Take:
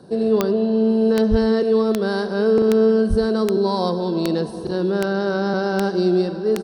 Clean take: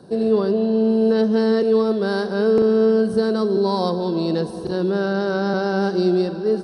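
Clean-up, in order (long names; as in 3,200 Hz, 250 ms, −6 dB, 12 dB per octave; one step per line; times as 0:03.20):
click removal
high-pass at the plosives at 0:01.30/0:03.09
echo removal 100 ms −17.5 dB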